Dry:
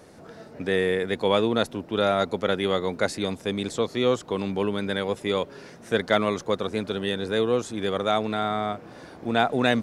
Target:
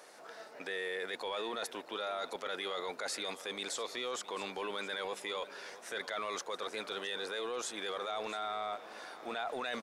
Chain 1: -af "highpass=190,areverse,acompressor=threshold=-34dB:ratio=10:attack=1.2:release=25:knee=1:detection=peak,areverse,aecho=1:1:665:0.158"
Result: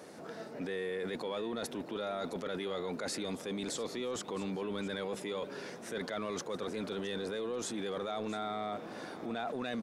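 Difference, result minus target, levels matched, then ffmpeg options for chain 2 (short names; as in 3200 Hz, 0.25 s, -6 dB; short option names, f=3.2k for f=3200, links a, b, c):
250 Hz band +9.5 dB
-af "highpass=730,areverse,acompressor=threshold=-34dB:ratio=10:attack=1.2:release=25:knee=1:detection=peak,areverse,aecho=1:1:665:0.158"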